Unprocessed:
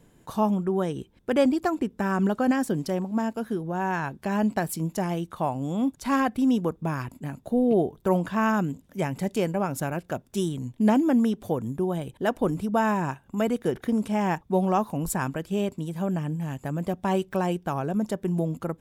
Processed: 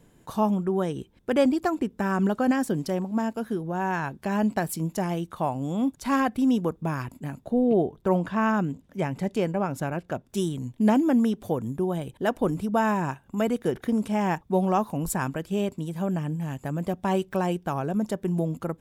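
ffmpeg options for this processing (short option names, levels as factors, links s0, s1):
-filter_complex "[0:a]asettb=1/sr,asplit=3[s0][s1][s2];[s0]atrim=end=7.444[s3];[s1]atrim=start=7.44:end=10.29,asetpts=PTS-STARTPTS,afade=t=in:d=0.004:c=qsin,afade=t=out:st=2.846:d=0.004:c=qsin,lowpass=f=4000:p=1[s4];[s2]atrim=start=10.286[s5];[s3][s4]acrossfade=d=0.004:c1=hsin:c2=qsin[s6];[s6][s5]acrossfade=d=0.004:c1=qsin:c2=hsin"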